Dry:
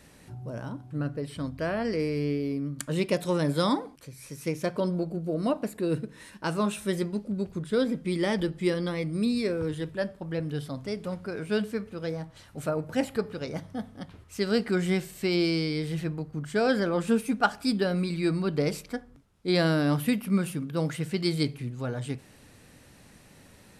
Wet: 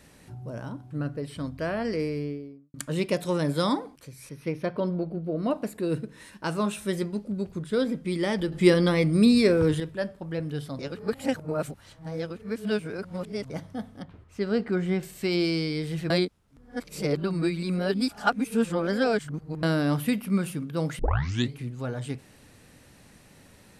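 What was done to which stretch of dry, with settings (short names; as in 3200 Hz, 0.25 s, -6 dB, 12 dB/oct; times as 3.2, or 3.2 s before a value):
1.95–2.74 studio fade out
4.29–5.51 running mean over 6 samples
8.52–9.8 gain +8 dB
10.79–13.5 reverse
14.02–15.03 LPF 1600 Hz 6 dB/oct
16.1–19.63 reverse
20.99 tape start 0.53 s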